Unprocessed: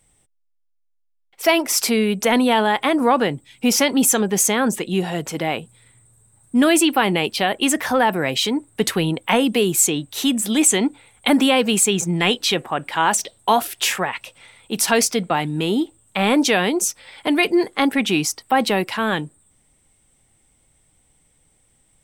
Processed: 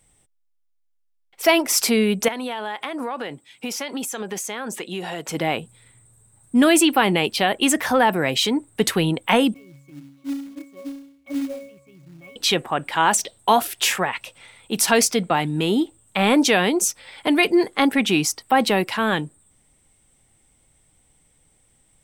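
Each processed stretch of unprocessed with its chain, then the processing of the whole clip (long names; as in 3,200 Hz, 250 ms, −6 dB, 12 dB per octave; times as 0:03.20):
0:02.28–0:05.29: high-pass filter 520 Hz 6 dB per octave + downward compressor, threshold −24 dBFS + high-shelf EQ 6,200 Hz −4.5 dB
0:09.54–0:12.36: resonances in every octave C#, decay 0.64 s + floating-point word with a short mantissa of 2 bits
whole clip: no processing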